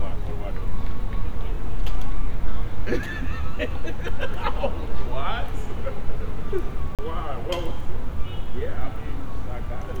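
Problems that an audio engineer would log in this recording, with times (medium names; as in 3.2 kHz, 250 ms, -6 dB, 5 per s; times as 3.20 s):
6.95–6.99 s: dropout 37 ms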